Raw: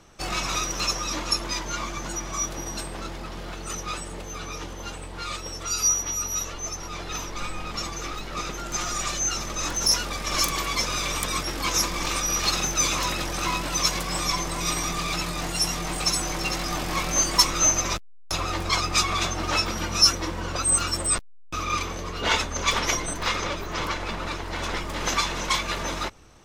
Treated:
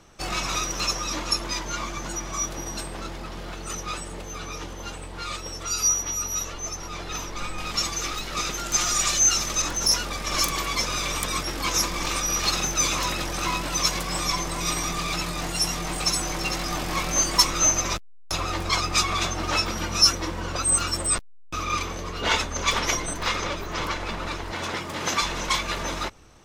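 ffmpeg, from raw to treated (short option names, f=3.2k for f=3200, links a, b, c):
-filter_complex "[0:a]asettb=1/sr,asplit=3[a][b][c];[a]atrim=end=7.584[d];[b]atrim=start=7.58:end=9.62,asetpts=PTS-STARTPTS,afade=t=in:d=0.004:c=qsin,afade=t=out:st=2.036:d=0.004:c=qsin,highshelf=f=2.3k:g=8.5[e];[c]atrim=start=9.616[f];[d][e]acrossfade=d=0.004:c1=hsin:c2=qsin[g];[g][f]acrossfade=d=0.004:c1=qsin:c2=hsin,asettb=1/sr,asplit=3[h][i][j];[h]atrim=end=24.524[k];[i]atrim=start=24.52:end=25.21,asetpts=PTS-STARTPTS,afade=t=in:d=0.004:c=qsin,afade=t=out:st=0.686:d=0.004:c=qsin,highpass=f=82:w=0.5412,highpass=f=82:w=1.3066[l];[j]atrim=start=25.206[m];[k][l]acrossfade=d=0.004:c1=hsin:c2=qsin[n];[n][m]acrossfade=d=0.004:c1=qsin:c2=hsin"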